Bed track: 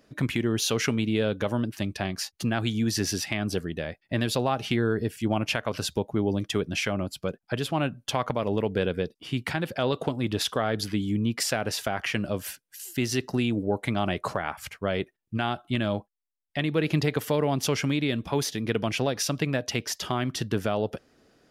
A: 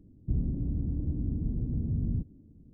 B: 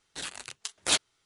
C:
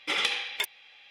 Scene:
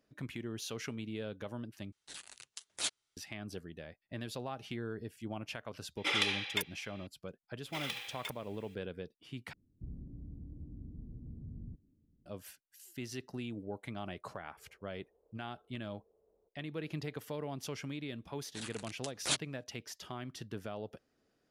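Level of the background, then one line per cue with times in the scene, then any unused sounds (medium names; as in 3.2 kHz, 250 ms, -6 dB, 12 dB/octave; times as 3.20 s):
bed track -15.5 dB
1.92 s: replace with B -15.5 dB + treble shelf 2.1 kHz +6 dB
5.97 s: add C -4 dB
7.65 s: add C -13.5 dB + companded quantiser 4-bit
9.53 s: replace with A -16.5 dB
14.26 s: add A -12.5 dB + elliptic high-pass 440 Hz
18.39 s: add B -8 dB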